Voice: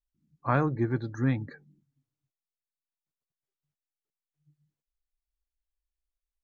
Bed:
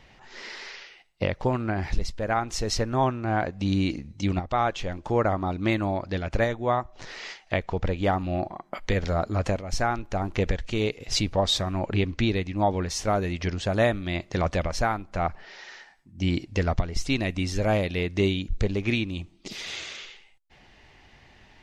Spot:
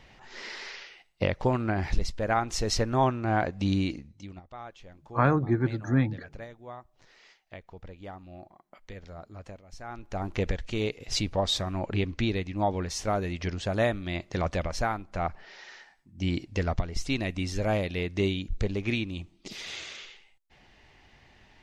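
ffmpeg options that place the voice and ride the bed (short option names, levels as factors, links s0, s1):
-filter_complex "[0:a]adelay=4700,volume=1.33[s0];[1:a]volume=5.31,afade=t=out:st=3.64:d=0.63:silence=0.125893,afade=t=in:st=9.83:d=0.44:silence=0.177828[s1];[s0][s1]amix=inputs=2:normalize=0"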